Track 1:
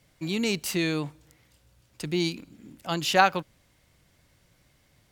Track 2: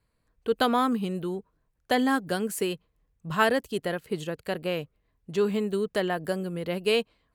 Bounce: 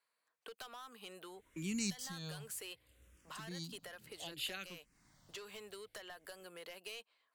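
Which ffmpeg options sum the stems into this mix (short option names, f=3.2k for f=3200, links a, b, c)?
-filter_complex "[0:a]asplit=2[a][b];[b]afreqshift=-0.64[c];[a][c]amix=inputs=2:normalize=1,adelay=1350,volume=-0.5dB[d];[1:a]highpass=830,acompressor=threshold=-37dB:ratio=3,asoftclip=type=tanh:threshold=-34dB,volume=-3.5dB,asplit=2[e][f];[f]apad=whole_len=285144[g];[d][g]sidechaincompress=threshold=-57dB:ratio=5:attack=49:release=330[h];[h][e]amix=inputs=2:normalize=0,acrossover=split=170|3000[i][j][k];[j]acompressor=threshold=-49dB:ratio=6[l];[i][l][k]amix=inputs=3:normalize=0"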